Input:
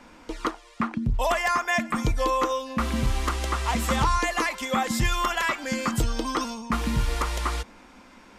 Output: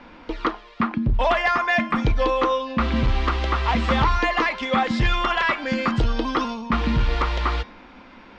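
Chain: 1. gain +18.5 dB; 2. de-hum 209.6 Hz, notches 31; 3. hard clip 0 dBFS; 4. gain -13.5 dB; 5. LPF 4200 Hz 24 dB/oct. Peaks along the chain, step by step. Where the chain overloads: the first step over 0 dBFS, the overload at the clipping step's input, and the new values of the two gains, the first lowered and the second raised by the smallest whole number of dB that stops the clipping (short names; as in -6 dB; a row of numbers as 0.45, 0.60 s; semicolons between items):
+4.0, +5.0, 0.0, -13.5, -12.0 dBFS; step 1, 5.0 dB; step 1 +13.5 dB, step 4 -8.5 dB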